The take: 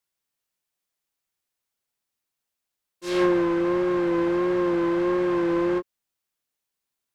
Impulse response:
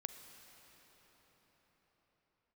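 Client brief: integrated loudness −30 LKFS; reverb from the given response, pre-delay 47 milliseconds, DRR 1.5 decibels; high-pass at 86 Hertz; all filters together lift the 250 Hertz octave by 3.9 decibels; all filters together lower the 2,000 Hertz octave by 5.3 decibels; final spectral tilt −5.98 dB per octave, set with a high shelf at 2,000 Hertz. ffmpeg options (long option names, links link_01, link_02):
-filter_complex "[0:a]highpass=86,equalizer=frequency=250:width_type=o:gain=8,highshelf=frequency=2000:gain=-6.5,equalizer=frequency=2000:width_type=o:gain=-3.5,asplit=2[link_01][link_02];[1:a]atrim=start_sample=2205,adelay=47[link_03];[link_02][link_03]afir=irnorm=-1:irlink=0,volume=1.5dB[link_04];[link_01][link_04]amix=inputs=2:normalize=0,volume=-12.5dB"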